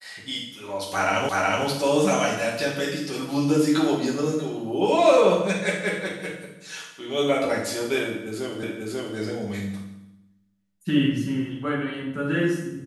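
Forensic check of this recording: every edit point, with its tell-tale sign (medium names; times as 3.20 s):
1.29 s: repeat of the last 0.37 s
8.63 s: repeat of the last 0.54 s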